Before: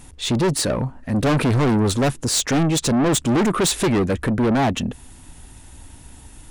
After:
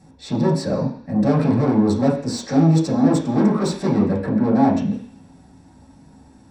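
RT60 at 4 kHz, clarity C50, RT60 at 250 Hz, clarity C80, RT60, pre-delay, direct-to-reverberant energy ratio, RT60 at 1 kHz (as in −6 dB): 0.90 s, 7.0 dB, 0.50 s, 10.0 dB, 0.50 s, 3 ms, −7.0 dB, 0.50 s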